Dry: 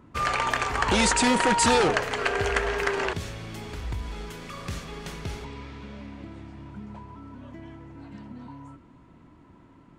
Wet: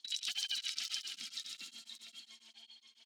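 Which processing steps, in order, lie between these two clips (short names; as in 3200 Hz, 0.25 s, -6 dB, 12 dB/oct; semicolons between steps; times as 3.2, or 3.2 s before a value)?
added harmonics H 7 -24 dB, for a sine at -9 dBFS; LFO band-pass sine 3.9 Hz 740–2600 Hz; wide varispeed 3.27×; graphic EQ 125/250/500/1000/4000 Hz -5/+11/-10/-8/+10 dB; flutter echo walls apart 11.4 m, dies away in 0.58 s; compressor 16:1, threshold -32 dBFS, peak gain reduction 16 dB; echo 0.519 s -6 dB; beating tremolo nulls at 7.3 Hz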